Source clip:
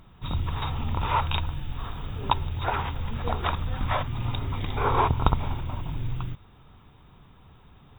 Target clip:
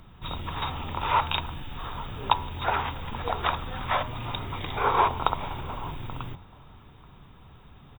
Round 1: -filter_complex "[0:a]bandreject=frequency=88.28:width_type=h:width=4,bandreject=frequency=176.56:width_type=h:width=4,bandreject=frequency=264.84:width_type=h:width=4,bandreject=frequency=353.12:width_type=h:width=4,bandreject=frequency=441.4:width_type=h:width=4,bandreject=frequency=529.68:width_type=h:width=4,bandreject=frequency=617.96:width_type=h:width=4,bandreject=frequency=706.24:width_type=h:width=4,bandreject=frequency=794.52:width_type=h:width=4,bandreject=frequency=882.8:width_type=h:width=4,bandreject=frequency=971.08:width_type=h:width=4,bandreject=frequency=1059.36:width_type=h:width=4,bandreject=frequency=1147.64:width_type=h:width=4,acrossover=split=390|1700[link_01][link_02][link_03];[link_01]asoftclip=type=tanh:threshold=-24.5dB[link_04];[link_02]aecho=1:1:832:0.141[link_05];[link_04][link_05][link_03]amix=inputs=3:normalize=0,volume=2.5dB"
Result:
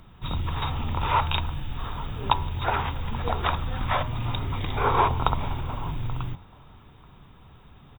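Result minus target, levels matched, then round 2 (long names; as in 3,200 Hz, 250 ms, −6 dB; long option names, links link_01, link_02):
soft clipping: distortion −7 dB
-filter_complex "[0:a]bandreject=frequency=88.28:width_type=h:width=4,bandreject=frequency=176.56:width_type=h:width=4,bandreject=frequency=264.84:width_type=h:width=4,bandreject=frequency=353.12:width_type=h:width=4,bandreject=frequency=441.4:width_type=h:width=4,bandreject=frequency=529.68:width_type=h:width=4,bandreject=frequency=617.96:width_type=h:width=4,bandreject=frequency=706.24:width_type=h:width=4,bandreject=frequency=794.52:width_type=h:width=4,bandreject=frequency=882.8:width_type=h:width=4,bandreject=frequency=971.08:width_type=h:width=4,bandreject=frequency=1059.36:width_type=h:width=4,bandreject=frequency=1147.64:width_type=h:width=4,acrossover=split=390|1700[link_01][link_02][link_03];[link_01]asoftclip=type=tanh:threshold=-36.5dB[link_04];[link_02]aecho=1:1:832:0.141[link_05];[link_04][link_05][link_03]amix=inputs=3:normalize=0,volume=2.5dB"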